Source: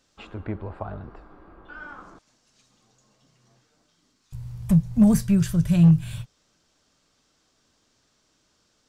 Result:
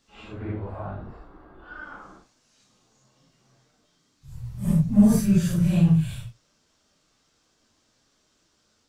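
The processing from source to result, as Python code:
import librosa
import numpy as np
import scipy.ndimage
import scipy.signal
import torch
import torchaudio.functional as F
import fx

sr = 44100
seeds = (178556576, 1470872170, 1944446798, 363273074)

y = fx.phase_scramble(x, sr, seeds[0], window_ms=200)
y = fx.notch(y, sr, hz=2400.0, q=11.0, at=(1.0, 1.91))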